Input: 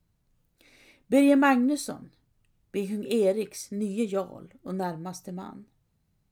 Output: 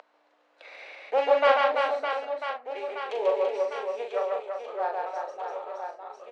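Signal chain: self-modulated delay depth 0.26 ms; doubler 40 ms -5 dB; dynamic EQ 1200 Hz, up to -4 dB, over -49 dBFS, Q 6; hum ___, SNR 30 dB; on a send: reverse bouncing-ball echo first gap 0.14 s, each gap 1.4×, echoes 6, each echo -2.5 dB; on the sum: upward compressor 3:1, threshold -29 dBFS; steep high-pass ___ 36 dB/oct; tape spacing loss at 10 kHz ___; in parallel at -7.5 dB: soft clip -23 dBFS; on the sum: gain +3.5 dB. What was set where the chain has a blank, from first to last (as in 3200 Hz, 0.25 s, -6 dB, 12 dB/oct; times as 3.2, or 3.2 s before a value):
60 Hz, 550 Hz, 39 dB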